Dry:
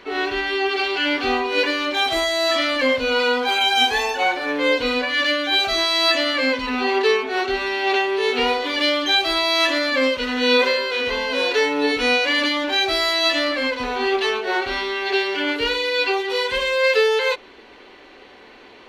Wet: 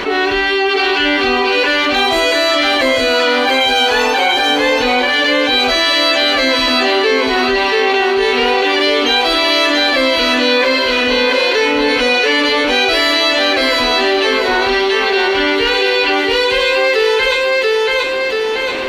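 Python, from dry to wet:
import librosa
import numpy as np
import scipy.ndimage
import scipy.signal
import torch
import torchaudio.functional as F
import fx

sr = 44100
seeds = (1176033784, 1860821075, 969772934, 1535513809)

p1 = x + fx.echo_feedback(x, sr, ms=683, feedback_pct=32, wet_db=-3, dry=0)
p2 = fx.env_flatten(p1, sr, amount_pct=70)
y = p2 * 10.0 ** (2.0 / 20.0)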